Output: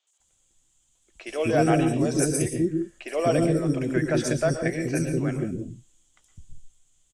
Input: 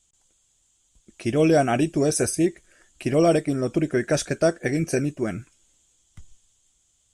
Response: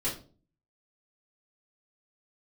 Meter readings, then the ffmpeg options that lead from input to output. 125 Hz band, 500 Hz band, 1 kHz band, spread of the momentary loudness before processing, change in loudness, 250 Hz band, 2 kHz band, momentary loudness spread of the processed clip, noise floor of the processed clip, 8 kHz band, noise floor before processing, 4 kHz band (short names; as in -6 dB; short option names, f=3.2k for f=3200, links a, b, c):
+1.0 dB, -2.5 dB, -1.5 dB, 10 LU, -2.0 dB, -1.0 dB, -1.0 dB, 10 LU, -68 dBFS, -2.0 dB, -67 dBFS, -3.0 dB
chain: -filter_complex "[0:a]acrossover=split=440|4700[a][b][c];[c]adelay=70[d];[a]adelay=200[e];[e][b][d]amix=inputs=3:normalize=0,asplit=2[f][g];[1:a]atrim=start_sample=2205,atrim=end_sample=3969,adelay=111[h];[g][h]afir=irnorm=-1:irlink=0,volume=-12.5dB[i];[f][i]amix=inputs=2:normalize=0,volume=-1.5dB"